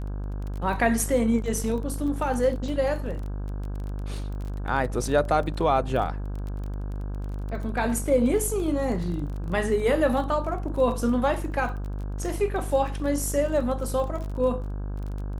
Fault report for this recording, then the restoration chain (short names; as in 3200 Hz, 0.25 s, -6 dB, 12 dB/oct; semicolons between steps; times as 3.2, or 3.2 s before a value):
buzz 50 Hz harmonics 33 -31 dBFS
crackle 23/s -33 dBFS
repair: de-click; de-hum 50 Hz, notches 33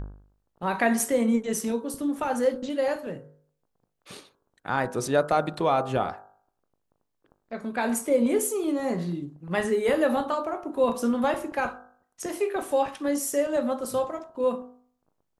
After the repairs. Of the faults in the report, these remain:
none